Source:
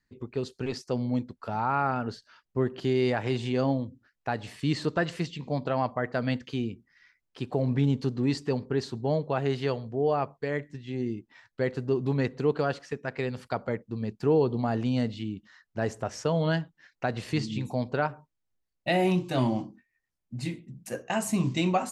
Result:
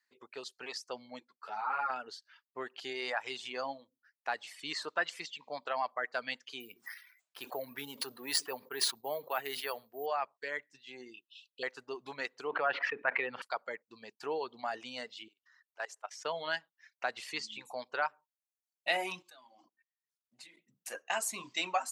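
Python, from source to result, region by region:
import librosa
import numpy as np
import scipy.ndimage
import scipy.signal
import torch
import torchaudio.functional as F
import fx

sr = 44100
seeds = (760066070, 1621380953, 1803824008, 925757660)

y = fx.chain(x, sr, fx.lowpass(hz=9800.0, slope=12),
    fx.ensemble(), at=(1.2, 1.9))
y = fx.chain(y, sr, fx.resample_bad(factor=3, down='none', up='hold'),
    fx.sustainer(db_per_s=60.0), at=(6.6, 10.06))
y = fx.chain(y, sr, fx.brickwall_bandstop(low_hz=510.0, high_hz=2500.0),
    fx.band_shelf(hz=1700.0, db=12.5, octaves=2.7), at=(11.14, 11.63))
y = fx.chain(y, sr, fx.lowpass(hz=2600.0, slope=24),
    fx.env_flatten(amount_pct=70), at=(12.47, 13.42))
y = fx.chain(y, sr, fx.highpass(hz=560.0, slope=12),
    fx.level_steps(step_db=16), at=(15.28, 16.25))
y = fx.chain(y, sr, fx.highpass(hz=98.0, slope=6),
    fx.level_steps(step_db=23),
    fx.peak_eq(hz=3700.0, db=3.5, octaves=0.44), at=(19.22, 20.57))
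y = fx.dereverb_blind(y, sr, rt60_s=0.88)
y = scipy.signal.sosfilt(scipy.signal.butter(2, 910.0, 'highpass', fs=sr, output='sos'), y)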